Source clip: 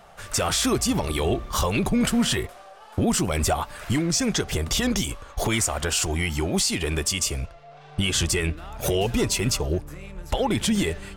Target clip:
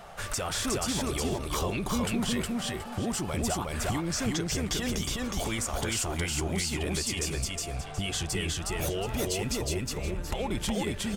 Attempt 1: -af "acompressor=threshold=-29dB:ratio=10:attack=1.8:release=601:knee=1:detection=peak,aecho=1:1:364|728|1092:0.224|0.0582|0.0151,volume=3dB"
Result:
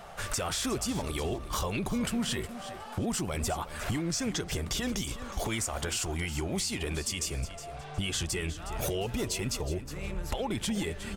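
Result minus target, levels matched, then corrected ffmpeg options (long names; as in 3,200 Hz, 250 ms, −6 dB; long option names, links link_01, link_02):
echo-to-direct −11.5 dB
-af "acompressor=threshold=-29dB:ratio=10:attack=1.8:release=601:knee=1:detection=peak,aecho=1:1:364|728|1092|1456:0.841|0.219|0.0569|0.0148,volume=3dB"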